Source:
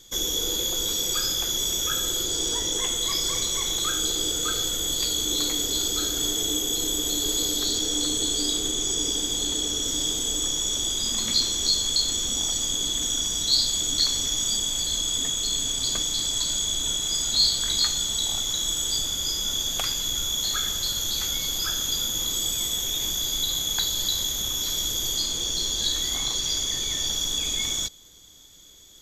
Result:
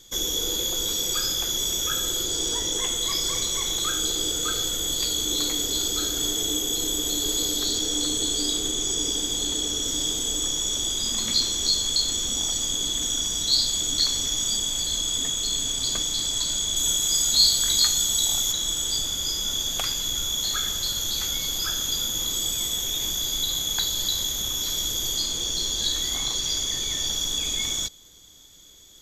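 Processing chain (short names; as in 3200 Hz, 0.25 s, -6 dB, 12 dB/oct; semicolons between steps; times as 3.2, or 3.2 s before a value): 16.76–18.52 high shelf 7900 Hz +11.5 dB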